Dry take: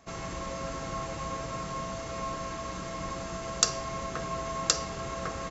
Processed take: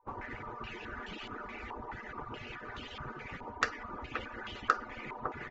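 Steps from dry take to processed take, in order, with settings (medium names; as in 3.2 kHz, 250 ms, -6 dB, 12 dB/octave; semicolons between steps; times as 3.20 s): harmonic-percussive separation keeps percussive; step-sequenced low-pass 4.7 Hz 990–3100 Hz; trim -1 dB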